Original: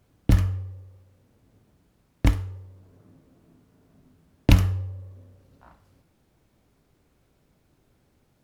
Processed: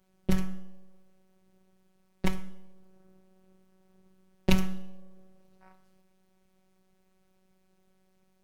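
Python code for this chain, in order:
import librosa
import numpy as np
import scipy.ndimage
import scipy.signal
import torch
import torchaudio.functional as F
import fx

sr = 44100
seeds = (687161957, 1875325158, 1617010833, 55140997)

y = fx.robotise(x, sr, hz=188.0)
y = np.maximum(y, 0.0)
y = fx.rev_schroeder(y, sr, rt60_s=0.73, comb_ms=28, drr_db=15.5)
y = y * 10.0 ** (-2.0 / 20.0)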